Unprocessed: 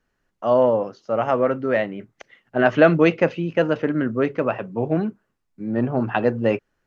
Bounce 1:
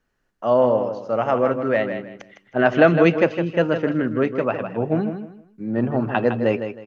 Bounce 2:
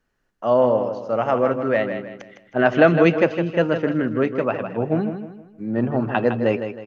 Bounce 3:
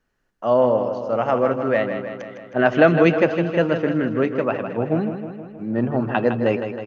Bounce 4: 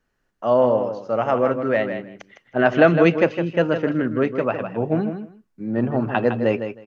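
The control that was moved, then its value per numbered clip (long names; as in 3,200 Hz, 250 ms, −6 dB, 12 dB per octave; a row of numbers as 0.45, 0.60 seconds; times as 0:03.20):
repeating echo, feedback: 26, 37, 62, 16%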